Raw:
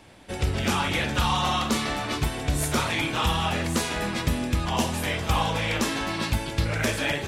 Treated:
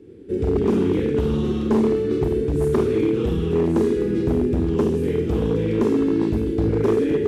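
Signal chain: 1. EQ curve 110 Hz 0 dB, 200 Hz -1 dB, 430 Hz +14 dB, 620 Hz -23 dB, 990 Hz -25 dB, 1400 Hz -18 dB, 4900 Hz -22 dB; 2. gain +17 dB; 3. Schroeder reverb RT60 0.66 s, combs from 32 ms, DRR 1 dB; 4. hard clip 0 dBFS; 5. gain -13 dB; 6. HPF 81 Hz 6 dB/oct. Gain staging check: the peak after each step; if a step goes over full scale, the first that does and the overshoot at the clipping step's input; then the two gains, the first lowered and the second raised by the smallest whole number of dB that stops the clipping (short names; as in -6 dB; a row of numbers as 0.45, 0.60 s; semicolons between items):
-8.5, +8.5, +9.0, 0.0, -13.0, -10.0 dBFS; step 2, 9.0 dB; step 2 +8 dB, step 5 -4 dB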